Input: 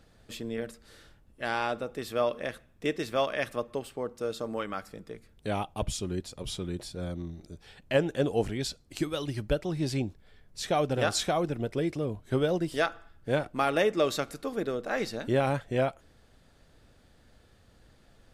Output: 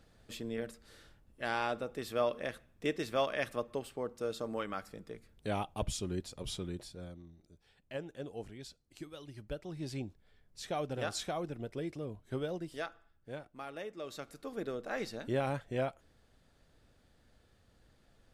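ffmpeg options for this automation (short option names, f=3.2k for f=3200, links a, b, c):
-af "volume=13.5dB,afade=t=out:st=6.54:d=0.68:silence=0.251189,afade=t=in:st=9.29:d=0.71:silence=0.473151,afade=t=out:st=12.24:d=1.25:silence=0.375837,afade=t=in:st=14.02:d=0.64:silence=0.281838"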